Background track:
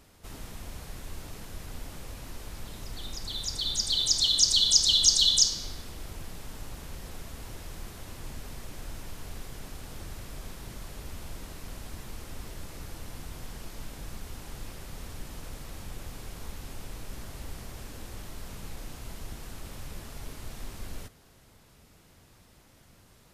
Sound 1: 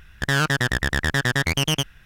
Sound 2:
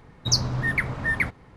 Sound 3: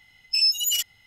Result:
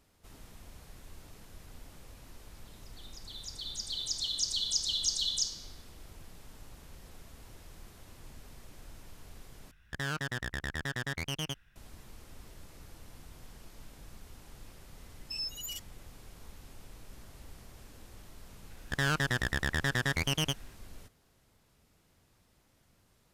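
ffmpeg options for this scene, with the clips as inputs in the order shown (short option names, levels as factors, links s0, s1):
-filter_complex "[1:a]asplit=2[s0][s1];[0:a]volume=0.316,asplit=2[s2][s3];[s2]atrim=end=9.714[s4];[s0]atrim=end=2.05,asetpts=PTS-STARTPTS,volume=0.188[s5];[s3]atrim=start=11.756[s6];[3:a]atrim=end=1.06,asetpts=PTS-STARTPTS,volume=0.141,afade=t=in:d=0.004:c=hsin,afade=t=out:st=1.056:d=0.004:c=hsin,adelay=14970[s7];[s1]atrim=end=2.05,asetpts=PTS-STARTPTS,volume=0.355,afade=t=in:d=0.004:c=hsin,afade=t=out:st=2.046:d=0.004:c=hsin,adelay=18700[s8];[s4][s5]acrossfade=d=0.004:c1=hsin:c2=hsin[s9];[s9][s6]acrossfade=d=0.004:c1=hsin:c2=hsin[s10];[s10][s7][s8]amix=inputs=3:normalize=0"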